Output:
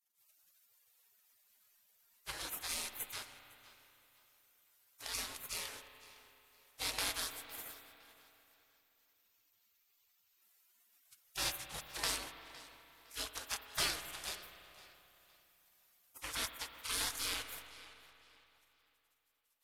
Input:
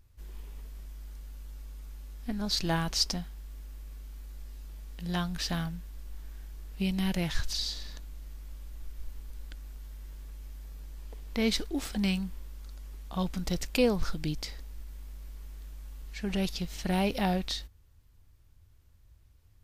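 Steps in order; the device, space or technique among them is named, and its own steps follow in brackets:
early wireless headset (high-pass filter 180 Hz 12 dB per octave; variable-slope delta modulation 64 kbit/s)
gate on every frequency bin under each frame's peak −30 dB weak
0:08.54–0:10.42: graphic EQ with 15 bands 630 Hz −11 dB, 1,600 Hz −4 dB, 10,000 Hz −11 dB
tape delay 509 ms, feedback 34%, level −17 dB, low-pass 5,900 Hz
spring reverb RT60 3.1 s, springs 31/57 ms, chirp 55 ms, DRR 8 dB
level +10 dB

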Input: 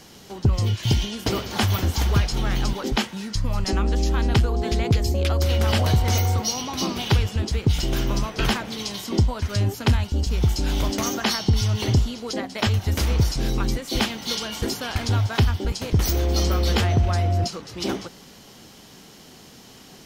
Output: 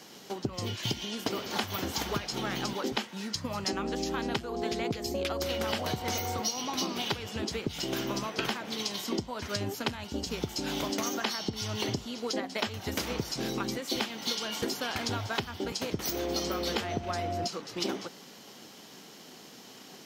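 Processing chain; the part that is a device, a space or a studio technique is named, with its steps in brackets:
high-pass filter 210 Hz 12 dB per octave
parametric band 9,500 Hz −4 dB 0.43 octaves
drum-bus smash (transient designer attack +5 dB, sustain 0 dB; downward compressor 6 to 1, threshold −25 dBFS, peak gain reduction 11.5 dB; soft clipping −13 dBFS, distortion −26 dB)
level −2.5 dB

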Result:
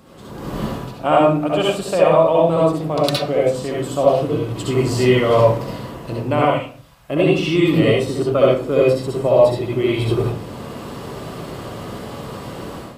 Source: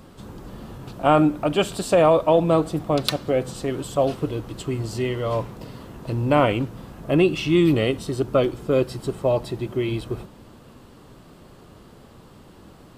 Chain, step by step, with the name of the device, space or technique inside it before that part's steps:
0:06.45–0:07.10: guitar amp tone stack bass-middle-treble 10-0-10
far laptop microphone (convolution reverb RT60 0.45 s, pre-delay 60 ms, DRR −4 dB; high-pass filter 130 Hz 6 dB per octave; automatic gain control gain up to 14 dB)
level −1 dB

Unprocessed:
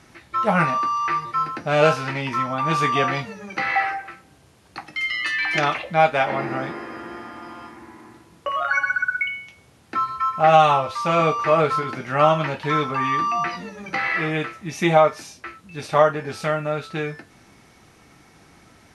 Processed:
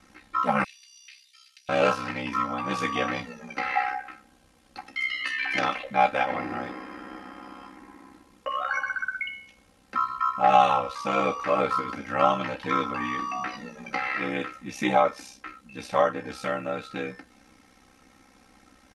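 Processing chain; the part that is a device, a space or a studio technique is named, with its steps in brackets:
0:00.64–0:01.69: inverse Chebyshev high-pass filter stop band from 1,200 Hz, stop band 50 dB
ring-modulated robot voice (ring modulation 32 Hz; comb filter 3.8 ms, depth 68%)
level −4 dB

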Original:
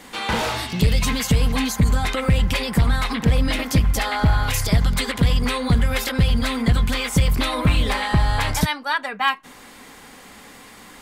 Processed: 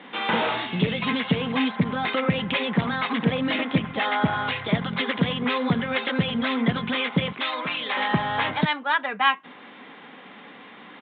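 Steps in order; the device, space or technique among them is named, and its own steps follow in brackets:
0:07.32–0:07.97: high-pass filter 1,100 Hz 6 dB per octave
Bluetooth headset (high-pass filter 160 Hz 24 dB per octave; downsampling to 8,000 Hz; SBC 64 kbit/s 16,000 Hz)

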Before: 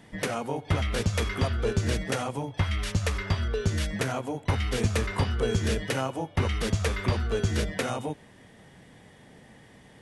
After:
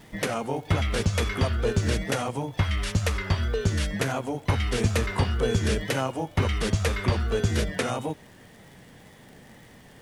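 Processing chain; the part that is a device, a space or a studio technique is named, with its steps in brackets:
vinyl LP (tape wow and flutter; surface crackle 79 per second −44 dBFS; pink noise bed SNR 34 dB)
level +2 dB

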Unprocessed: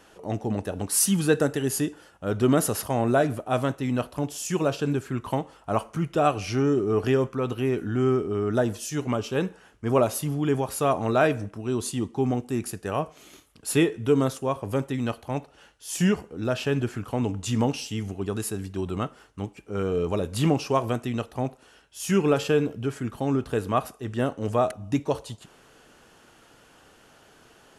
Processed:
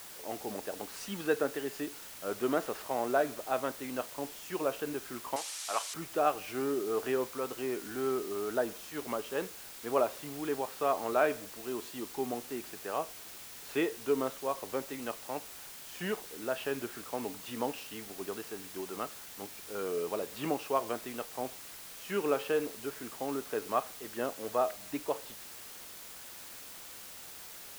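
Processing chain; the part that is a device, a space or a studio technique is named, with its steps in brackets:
wax cylinder (band-pass filter 390–2,700 Hz; tape wow and flutter; white noise bed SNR 12 dB)
0:05.36–0:05.94: meter weighting curve ITU-R 468
level −5.5 dB

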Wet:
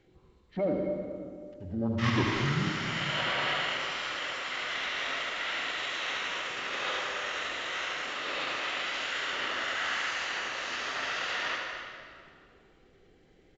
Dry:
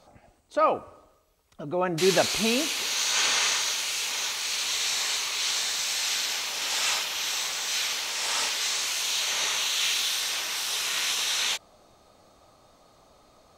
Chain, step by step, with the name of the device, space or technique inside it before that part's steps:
monster voice (pitch shifter −8 semitones; formants moved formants −4.5 semitones; low-shelf EQ 150 Hz +4 dB; single-tap delay 79 ms −6 dB; convolution reverb RT60 2.2 s, pre-delay 98 ms, DRR 2.5 dB)
level −7.5 dB

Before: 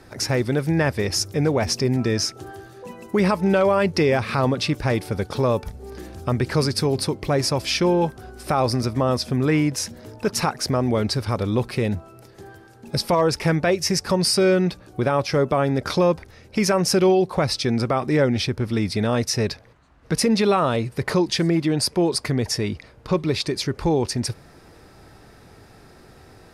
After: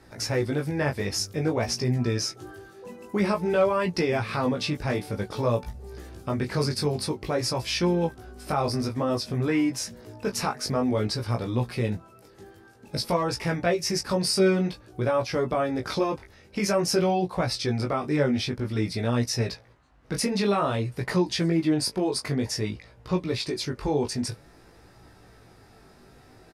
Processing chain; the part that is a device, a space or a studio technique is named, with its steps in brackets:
double-tracked vocal (double-tracking delay 16 ms −9 dB; chorus effect 0.52 Hz, delay 17 ms, depth 3.7 ms)
level −2.5 dB

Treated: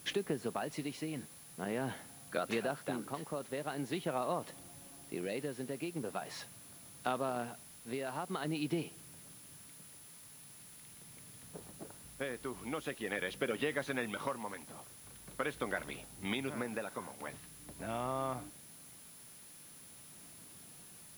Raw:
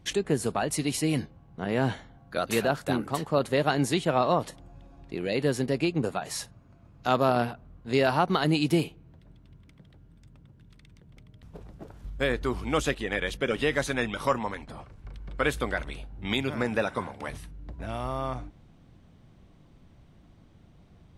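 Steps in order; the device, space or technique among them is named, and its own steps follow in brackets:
medium wave at night (band-pass filter 150–3,600 Hz; downward compressor, threshold −28 dBFS, peak gain reduction 10 dB; amplitude tremolo 0.44 Hz, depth 48%; steady tone 10,000 Hz −53 dBFS; white noise bed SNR 17 dB)
level −2.5 dB

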